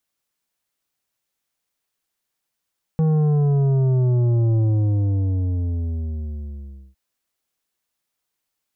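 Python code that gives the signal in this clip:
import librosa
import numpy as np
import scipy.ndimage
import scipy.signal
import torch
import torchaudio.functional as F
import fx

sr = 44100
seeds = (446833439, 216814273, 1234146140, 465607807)

y = fx.sub_drop(sr, level_db=-16, start_hz=160.0, length_s=3.96, drive_db=9.0, fade_s=2.38, end_hz=65.0)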